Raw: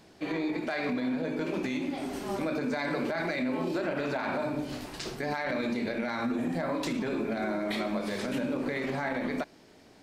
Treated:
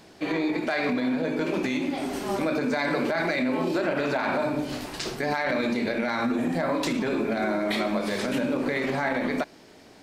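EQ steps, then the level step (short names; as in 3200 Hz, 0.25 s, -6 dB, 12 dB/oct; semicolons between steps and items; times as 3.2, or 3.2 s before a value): low shelf 230 Hz -3.5 dB; +6.0 dB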